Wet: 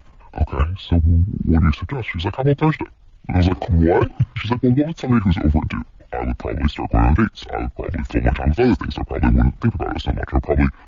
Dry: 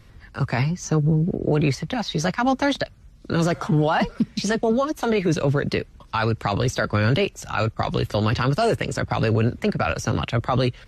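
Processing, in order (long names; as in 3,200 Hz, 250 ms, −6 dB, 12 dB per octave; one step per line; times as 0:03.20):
output level in coarse steps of 10 dB
tape wow and flutter 32 cents
pitch shifter −10.5 semitones
level +7 dB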